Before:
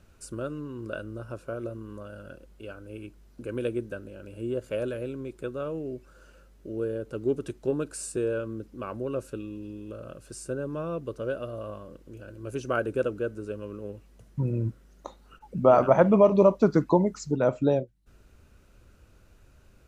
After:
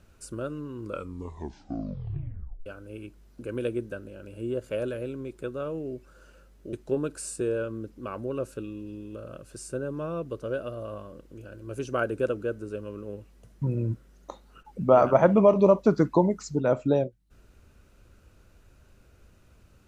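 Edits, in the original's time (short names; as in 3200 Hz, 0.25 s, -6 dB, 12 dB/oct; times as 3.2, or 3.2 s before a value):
0.8 tape stop 1.86 s
6.73–7.49 cut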